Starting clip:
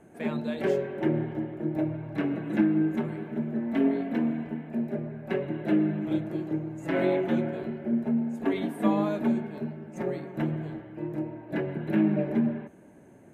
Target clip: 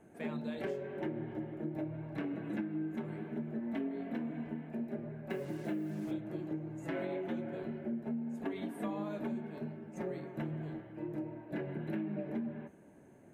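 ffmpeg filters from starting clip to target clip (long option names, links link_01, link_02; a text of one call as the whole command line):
ffmpeg -i in.wav -filter_complex "[0:a]asettb=1/sr,asplit=3[link_01][link_02][link_03];[link_01]atrim=end=5.304[link_04];[link_02]atrim=start=5.3:end=6.11,asetpts=PTS-STARTPTS,afade=type=in:duration=0.004:curve=qsin,afade=type=out:start_time=0.806:duration=0.004:curve=qsin,acrusher=bits=7:mix=0:aa=0.5[link_05];[link_03]atrim=start=6.106[link_06];[link_04][link_05]acrossfade=duration=0.004:curve1=hsin:curve2=qsin[link_07];[link_07][link_06]acrossfade=duration=0.004:curve1=qsin:curve2=hsin,flanger=delay=8.9:depth=6.3:regen=-62:speed=0.81:shape=triangular,acompressor=threshold=-33dB:ratio=6,volume=-1.5dB" out.wav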